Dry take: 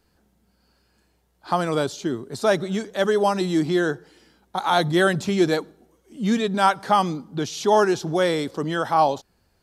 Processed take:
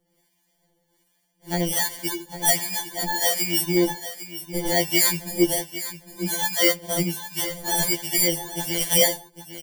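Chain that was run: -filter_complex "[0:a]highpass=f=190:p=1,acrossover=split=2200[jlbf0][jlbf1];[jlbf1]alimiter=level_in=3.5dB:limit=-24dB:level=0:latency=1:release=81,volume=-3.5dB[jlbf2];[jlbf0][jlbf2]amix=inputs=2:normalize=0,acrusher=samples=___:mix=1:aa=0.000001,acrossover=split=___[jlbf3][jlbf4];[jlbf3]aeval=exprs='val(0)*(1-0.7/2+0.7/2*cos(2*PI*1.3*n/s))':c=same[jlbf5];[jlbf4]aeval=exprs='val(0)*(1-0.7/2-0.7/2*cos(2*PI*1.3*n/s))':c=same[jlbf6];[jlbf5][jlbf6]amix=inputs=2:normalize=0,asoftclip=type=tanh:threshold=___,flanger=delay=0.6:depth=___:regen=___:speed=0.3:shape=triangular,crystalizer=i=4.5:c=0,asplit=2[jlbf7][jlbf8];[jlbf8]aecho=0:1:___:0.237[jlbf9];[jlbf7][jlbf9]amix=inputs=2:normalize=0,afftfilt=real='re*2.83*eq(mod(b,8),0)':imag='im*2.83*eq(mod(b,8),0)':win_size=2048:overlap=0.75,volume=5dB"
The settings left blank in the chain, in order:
34, 750, -9dB, 1.7, -82, 804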